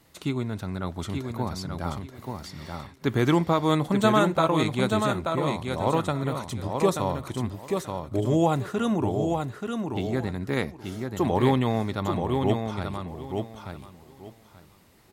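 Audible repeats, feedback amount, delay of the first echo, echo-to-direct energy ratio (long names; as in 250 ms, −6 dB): 3, 20%, 882 ms, −5.0 dB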